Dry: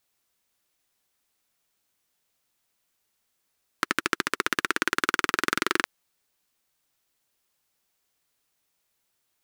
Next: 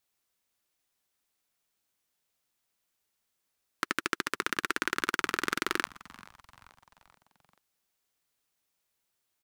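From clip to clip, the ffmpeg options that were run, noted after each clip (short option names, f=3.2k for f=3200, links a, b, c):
-filter_complex "[0:a]asplit=5[a][b][c][d][e];[b]adelay=434,afreqshift=-130,volume=-21dB[f];[c]adelay=868,afreqshift=-260,volume=-26.7dB[g];[d]adelay=1302,afreqshift=-390,volume=-32.4dB[h];[e]adelay=1736,afreqshift=-520,volume=-38dB[i];[a][f][g][h][i]amix=inputs=5:normalize=0,volume=-5dB"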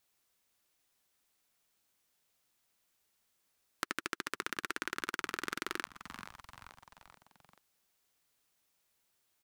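-af "acompressor=threshold=-37dB:ratio=4,volume=3dB"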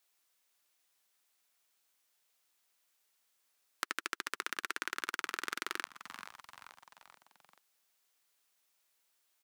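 -af "highpass=f=640:p=1,volume=1dB"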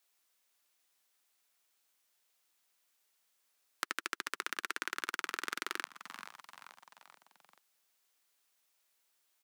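-af "highpass=f=150:w=0.5412,highpass=f=150:w=1.3066"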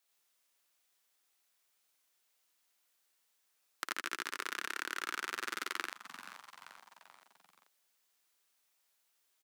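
-af "aecho=1:1:55.39|87.46:0.501|0.794,volume=-3dB"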